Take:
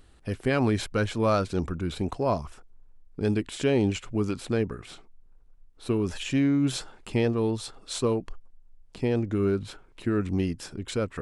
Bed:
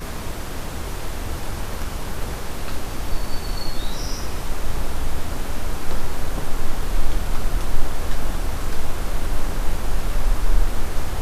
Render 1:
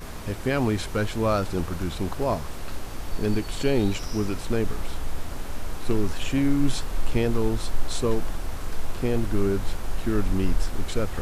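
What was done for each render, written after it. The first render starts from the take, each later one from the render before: add bed -7 dB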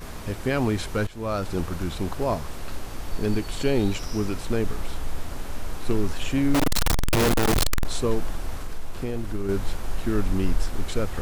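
1.07–1.54 s: fade in, from -15.5 dB; 6.54–7.85 s: one-bit comparator; 8.56–9.49 s: compression 2:1, threshold -27 dBFS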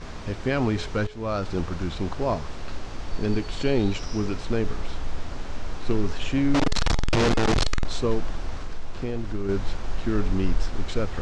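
low-pass 6.4 kHz 24 dB/octave; de-hum 424.4 Hz, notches 34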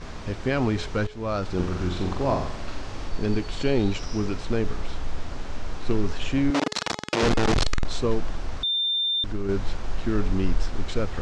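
1.55–3.08 s: flutter echo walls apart 7.6 m, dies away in 0.61 s; 6.50–7.23 s: high-pass 260 Hz; 8.63–9.24 s: bleep 3.59 kHz -21.5 dBFS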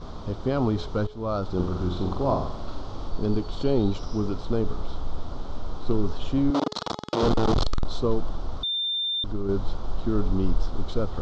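low-pass 4 kHz 12 dB/octave; high-order bell 2.1 kHz -14.5 dB 1 oct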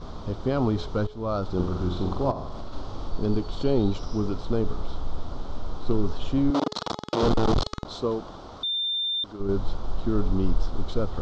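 2.31–2.73 s: compression 12:1, threshold -28 dBFS; 7.60–9.39 s: high-pass 160 Hz -> 520 Hz 6 dB/octave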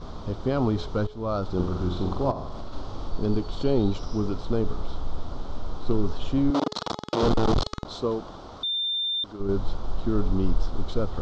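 no audible change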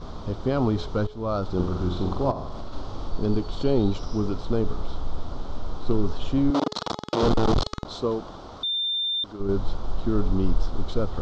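trim +1 dB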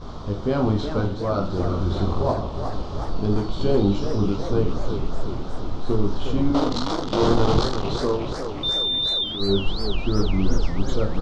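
on a send: reverse bouncing-ball echo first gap 20 ms, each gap 1.3×, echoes 5; on the sum: modulated delay 362 ms, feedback 65%, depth 215 cents, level -8.5 dB

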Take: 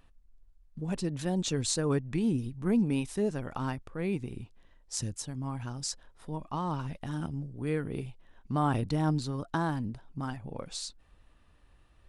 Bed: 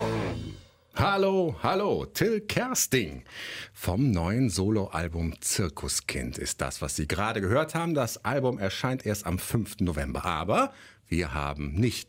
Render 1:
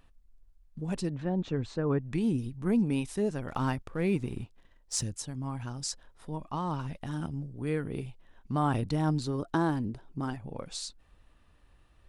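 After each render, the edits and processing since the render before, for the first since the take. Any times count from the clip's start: 1.14–2.00 s: low-pass 1.8 kHz; 3.48–5.03 s: waveshaping leveller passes 1; 9.27–10.36 s: peaking EQ 370 Hz +8 dB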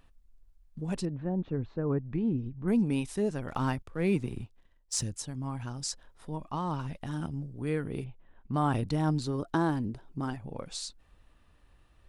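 1.05–2.68 s: tape spacing loss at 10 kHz 40 dB; 3.82–4.94 s: three bands expanded up and down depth 40%; 8.04–8.54 s: distance through air 380 m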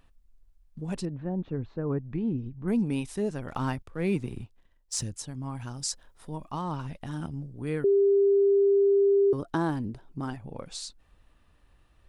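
5.55–6.62 s: treble shelf 6.1 kHz +6.5 dB; 7.84–9.33 s: bleep 398 Hz -18 dBFS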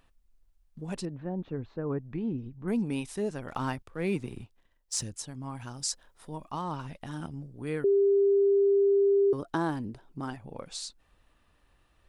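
bass shelf 230 Hz -6 dB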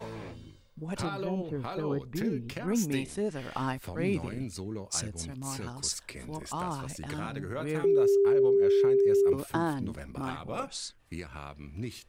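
add bed -12 dB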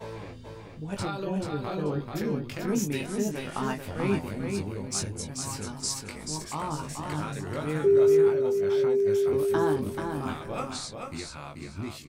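doubling 20 ms -4.5 dB; on a send: feedback delay 436 ms, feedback 25%, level -5 dB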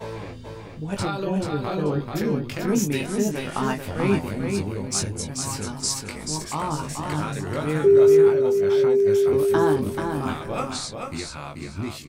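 trim +5.5 dB

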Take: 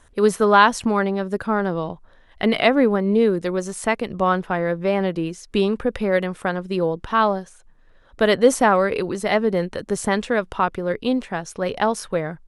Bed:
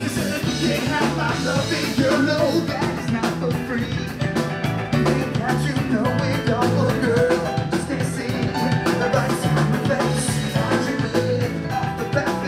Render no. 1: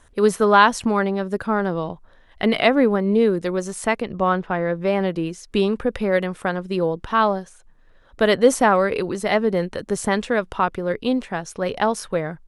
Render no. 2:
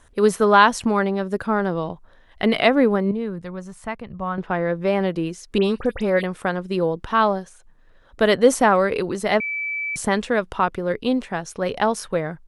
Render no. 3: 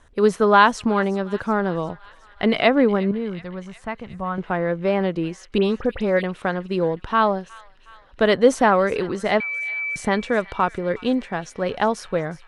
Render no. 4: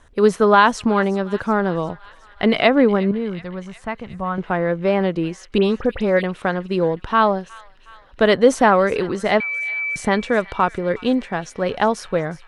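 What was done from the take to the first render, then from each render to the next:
4.02–4.75 s: distance through air 110 m
3.11–4.38 s: FFT filter 140 Hz 0 dB, 350 Hz -14 dB, 1 kHz -6 dB, 6 kHz -15 dB; 5.58–6.24 s: phase dispersion highs, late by 66 ms, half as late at 3 kHz; 9.40–9.96 s: bleep 2.31 kHz -23.5 dBFS
distance through air 60 m; feedback echo behind a high-pass 365 ms, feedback 64%, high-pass 1.7 kHz, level -17 dB
trim +2.5 dB; peak limiter -2 dBFS, peak gain reduction 3 dB

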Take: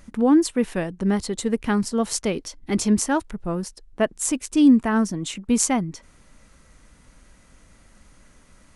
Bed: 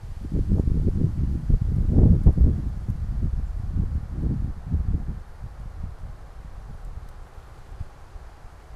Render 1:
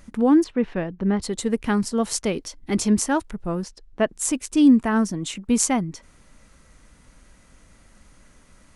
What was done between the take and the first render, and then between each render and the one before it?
0.44–1.22 s: distance through air 250 m; 3.63–4.09 s: low-pass 6.3 kHz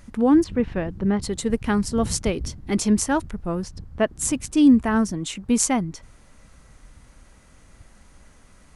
add bed -14.5 dB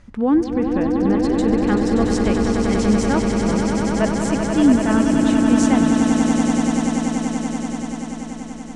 distance through air 90 m; echo with a slow build-up 96 ms, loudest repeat 8, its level -7 dB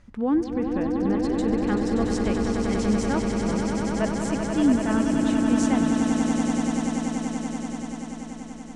trim -6 dB

